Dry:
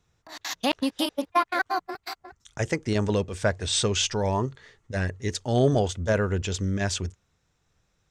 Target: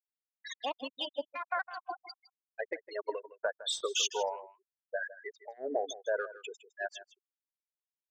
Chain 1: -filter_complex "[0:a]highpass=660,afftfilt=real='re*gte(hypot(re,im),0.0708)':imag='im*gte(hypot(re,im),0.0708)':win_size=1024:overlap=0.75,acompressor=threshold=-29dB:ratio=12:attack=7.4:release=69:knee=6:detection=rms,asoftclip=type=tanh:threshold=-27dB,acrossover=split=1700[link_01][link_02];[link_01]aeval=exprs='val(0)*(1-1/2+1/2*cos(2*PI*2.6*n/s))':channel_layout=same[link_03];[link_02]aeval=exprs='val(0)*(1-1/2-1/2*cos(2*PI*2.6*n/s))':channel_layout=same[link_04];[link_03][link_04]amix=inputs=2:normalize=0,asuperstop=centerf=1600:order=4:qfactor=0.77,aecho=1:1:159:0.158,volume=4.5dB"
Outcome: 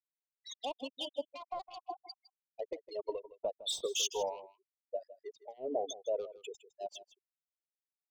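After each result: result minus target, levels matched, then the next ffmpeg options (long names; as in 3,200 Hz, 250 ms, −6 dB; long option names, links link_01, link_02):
2,000 Hz band −12.5 dB; soft clipping: distortion +12 dB
-filter_complex "[0:a]highpass=660,afftfilt=real='re*gte(hypot(re,im),0.0708)':imag='im*gte(hypot(re,im),0.0708)':win_size=1024:overlap=0.75,acompressor=threshold=-29dB:ratio=12:attack=7.4:release=69:knee=6:detection=rms,asoftclip=type=tanh:threshold=-27dB,acrossover=split=1700[link_01][link_02];[link_01]aeval=exprs='val(0)*(1-1/2+1/2*cos(2*PI*2.6*n/s))':channel_layout=same[link_03];[link_02]aeval=exprs='val(0)*(1-1/2-1/2*cos(2*PI*2.6*n/s))':channel_layout=same[link_04];[link_03][link_04]amix=inputs=2:normalize=0,aecho=1:1:159:0.158,volume=4.5dB"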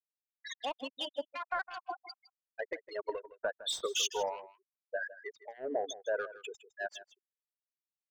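soft clipping: distortion +12 dB
-filter_complex "[0:a]highpass=660,afftfilt=real='re*gte(hypot(re,im),0.0708)':imag='im*gte(hypot(re,im),0.0708)':win_size=1024:overlap=0.75,acompressor=threshold=-29dB:ratio=12:attack=7.4:release=69:knee=6:detection=rms,asoftclip=type=tanh:threshold=-19.5dB,acrossover=split=1700[link_01][link_02];[link_01]aeval=exprs='val(0)*(1-1/2+1/2*cos(2*PI*2.6*n/s))':channel_layout=same[link_03];[link_02]aeval=exprs='val(0)*(1-1/2-1/2*cos(2*PI*2.6*n/s))':channel_layout=same[link_04];[link_03][link_04]amix=inputs=2:normalize=0,aecho=1:1:159:0.158,volume=4.5dB"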